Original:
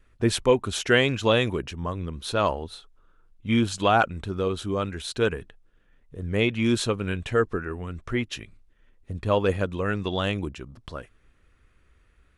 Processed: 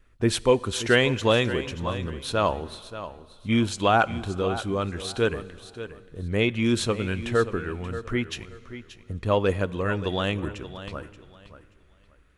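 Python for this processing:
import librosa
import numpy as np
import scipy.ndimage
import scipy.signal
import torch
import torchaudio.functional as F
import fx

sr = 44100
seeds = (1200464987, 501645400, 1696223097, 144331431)

p1 = x + fx.echo_feedback(x, sr, ms=580, feedback_pct=22, wet_db=-13.0, dry=0)
y = fx.rev_plate(p1, sr, seeds[0], rt60_s=2.9, hf_ratio=0.9, predelay_ms=0, drr_db=20.0)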